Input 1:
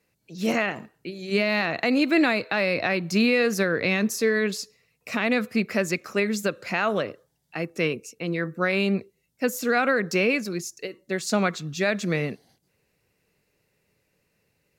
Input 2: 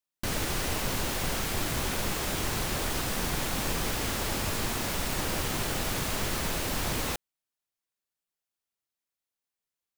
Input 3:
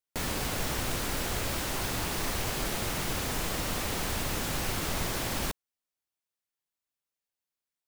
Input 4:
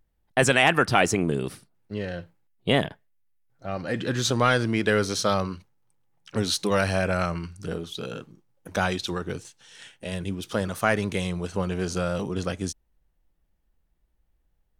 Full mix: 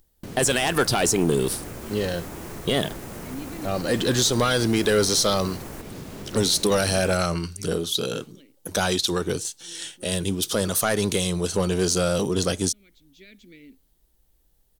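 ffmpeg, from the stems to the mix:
-filter_complex "[0:a]asplit=3[a][b][c];[a]bandpass=f=270:t=q:w=8,volume=0dB[d];[b]bandpass=f=2.29k:t=q:w=8,volume=-6dB[e];[c]bandpass=f=3.01k:t=q:w=8,volume=-9dB[f];[d][e][f]amix=inputs=3:normalize=0,adelay=1400,volume=-11.5dB[g];[1:a]equalizer=f=180:w=0.44:g=12.5,volume=-12dB[h];[2:a]equalizer=f=3.7k:t=o:w=0.94:g=-13.5,adelay=300,volume=-2dB[i];[3:a]acontrast=72,volume=-3dB,asplit=2[j][k];[k]apad=whole_len=713972[l];[g][l]sidechaincompress=threshold=-36dB:ratio=8:attack=43:release=436[m];[h][i]amix=inputs=2:normalize=0,acompressor=threshold=-34dB:ratio=5,volume=0dB[n];[m][j]amix=inputs=2:normalize=0,aexciter=amount=3.9:drive=4.6:freq=3.3k,alimiter=limit=-10dB:level=0:latency=1:release=109,volume=0dB[o];[n][o]amix=inputs=2:normalize=0,equalizer=f=400:w=1.4:g=4.5,asoftclip=type=tanh:threshold=-11dB"

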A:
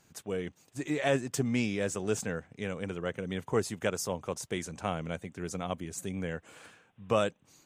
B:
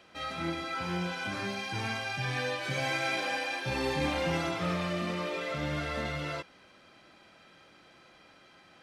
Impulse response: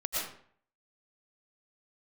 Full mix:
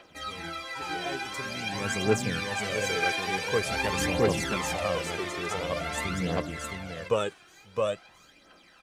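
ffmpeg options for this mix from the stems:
-filter_complex "[0:a]volume=-1dB,afade=t=in:st=1.58:d=0.35:silence=0.298538,asplit=2[a][b];[b]volume=-3.5dB[c];[1:a]highshelf=f=5.8k:g=6,aphaser=in_gain=1:out_gain=1:delay=1.3:decay=0.4:speed=0.5:type=sinusoidal,equalizer=f=120:w=0.83:g=-13.5,volume=-2.5dB,asplit=2[d][e];[e]volume=-5dB[f];[c][f]amix=inputs=2:normalize=0,aecho=0:1:665:1[g];[a][d][g]amix=inputs=3:normalize=0,aphaser=in_gain=1:out_gain=1:delay=2.9:decay=0.58:speed=0.47:type=triangular"

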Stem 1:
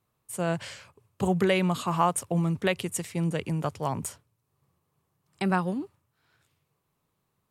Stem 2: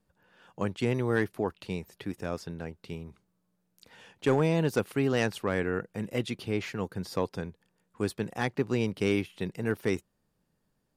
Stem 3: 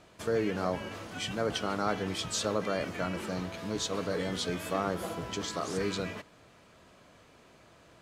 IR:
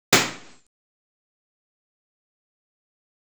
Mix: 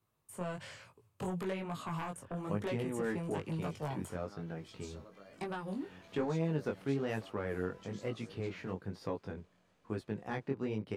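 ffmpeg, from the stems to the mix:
-filter_complex "[0:a]acrossover=split=330|2000[a][b][c];[a]acompressor=threshold=-35dB:ratio=4[d];[b]acompressor=threshold=-33dB:ratio=4[e];[c]acompressor=threshold=-49dB:ratio=4[f];[d][e][f]amix=inputs=3:normalize=0,aeval=exprs='0.119*sin(PI/2*2*val(0)/0.119)':c=same,volume=-11dB,asplit=2[g][h];[1:a]lowpass=f=1.8k:p=1,acompressor=threshold=-39dB:ratio=1.5,adelay=1900,volume=0.5dB[i];[2:a]acompressor=threshold=-36dB:ratio=6,adelay=2500,volume=-13dB[j];[h]apad=whole_len=463900[k];[j][k]sidechaincompress=threshold=-43dB:ratio=8:attack=16:release=204[l];[g][i][l]amix=inputs=3:normalize=0,flanger=delay=18:depth=4.3:speed=1.1"

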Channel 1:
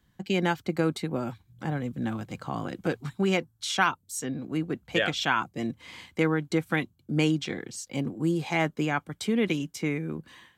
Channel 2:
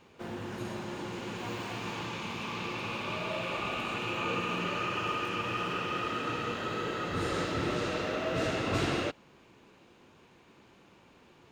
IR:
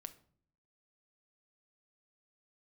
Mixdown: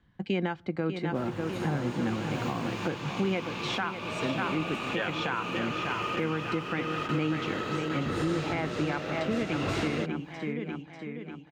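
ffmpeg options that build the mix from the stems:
-filter_complex "[0:a]lowpass=2.9k,volume=0.5dB,asplit=4[a][b][c][d];[b]volume=-9.5dB[e];[c]volume=-7dB[f];[1:a]adelay=950,volume=2.5dB[g];[d]apad=whole_len=553920[h];[g][h]sidechaingate=range=-33dB:threshold=-57dB:ratio=16:detection=peak[i];[2:a]atrim=start_sample=2205[j];[e][j]afir=irnorm=-1:irlink=0[k];[f]aecho=0:1:594|1188|1782|2376|2970|3564|4158|4752:1|0.53|0.281|0.149|0.0789|0.0418|0.0222|0.0117[l];[a][i][k][l]amix=inputs=4:normalize=0,alimiter=limit=-19.5dB:level=0:latency=1:release=366"

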